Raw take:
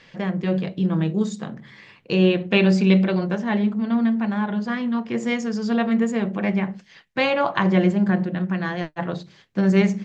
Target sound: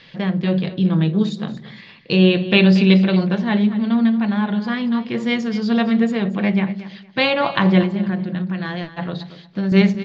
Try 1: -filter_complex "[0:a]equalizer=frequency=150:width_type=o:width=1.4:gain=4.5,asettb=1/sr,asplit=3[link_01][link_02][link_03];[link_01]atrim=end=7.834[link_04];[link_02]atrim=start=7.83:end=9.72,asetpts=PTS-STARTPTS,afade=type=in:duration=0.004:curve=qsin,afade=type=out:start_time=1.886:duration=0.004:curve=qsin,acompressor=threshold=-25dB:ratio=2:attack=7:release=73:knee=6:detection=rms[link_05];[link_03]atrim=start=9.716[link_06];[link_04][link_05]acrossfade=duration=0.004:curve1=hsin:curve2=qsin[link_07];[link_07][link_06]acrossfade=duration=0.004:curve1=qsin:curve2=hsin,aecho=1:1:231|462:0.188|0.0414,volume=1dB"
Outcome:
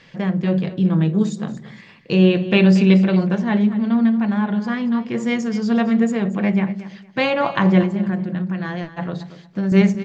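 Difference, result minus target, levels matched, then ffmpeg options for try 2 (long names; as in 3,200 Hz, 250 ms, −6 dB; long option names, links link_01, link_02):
4,000 Hz band −6.0 dB
-filter_complex "[0:a]lowpass=frequency=4000:width_type=q:width=2.6,equalizer=frequency=150:width_type=o:width=1.4:gain=4.5,asettb=1/sr,asplit=3[link_01][link_02][link_03];[link_01]atrim=end=7.834[link_04];[link_02]atrim=start=7.83:end=9.72,asetpts=PTS-STARTPTS,afade=type=in:duration=0.004:curve=qsin,afade=type=out:start_time=1.886:duration=0.004:curve=qsin,acompressor=threshold=-25dB:ratio=2:attack=7:release=73:knee=6:detection=rms[link_05];[link_03]atrim=start=9.716[link_06];[link_04][link_05]acrossfade=duration=0.004:curve1=hsin:curve2=qsin[link_07];[link_07][link_06]acrossfade=duration=0.004:curve1=qsin:curve2=hsin,aecho=1:1:231|462:0.188|0.0414,volume=1dB"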